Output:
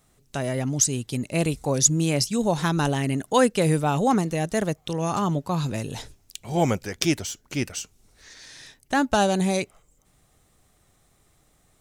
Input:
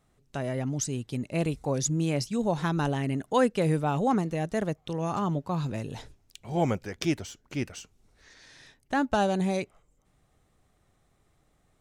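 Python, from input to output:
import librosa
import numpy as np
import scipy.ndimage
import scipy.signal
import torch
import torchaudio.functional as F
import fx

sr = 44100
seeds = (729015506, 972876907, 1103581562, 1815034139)

y = fx.high_shelf(x, sr, hz=4300.0, db=11.0)
y = F.gain(torch.from_numpy(y), 4.0).numpy()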